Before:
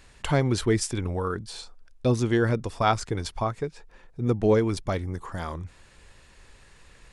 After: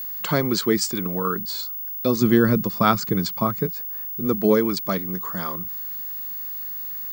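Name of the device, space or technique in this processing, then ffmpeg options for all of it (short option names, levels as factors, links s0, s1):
old television with a line whistle: -filter_complex "[0:a]asettb=1/sr,asplit=3[s0][s1][s2];[s0]atrim=end=2.214[s3];[s1]atrim=start=2.21:end=3.66,asetpts=PTS-STARTPTS,afade=t=in:d=0.004:c=qsin,afade=t=out:st=1.446:d=0.004:c=qsin,bass=f=250:g=11,treble=f=4000:g=-2[s4];[s2]atrim=start=3.656[s5];[s3][s4]acrossfade=d=0.004:c1=hsin:c2=qsin[s6];[s6][s5]acrossfade=d=0.004:c1=qsin:c2=hsin,highpass=f=160:w=0.5412,highpass=f=160:w=1.3066,equalizer=f=190:t=q:w=4:g=8,equalizer=f=790:t=q:w=4:g=-6,equalizer=f=1200:t=q:w=4:g=6,equalizer=f=2700:t=q:w=4:g=-3,equalizer=f=4500:t=q:w=4:g=9,equalizer=f=6900:t=q:w=4:g=4,lowpass=f=8600:w=0.5412,lowpass=f=8600:w=1.3066,aeval=exprs='val(0)+0.0282*sin(2*PI*15625*n/s)':c=same,volume=1.33"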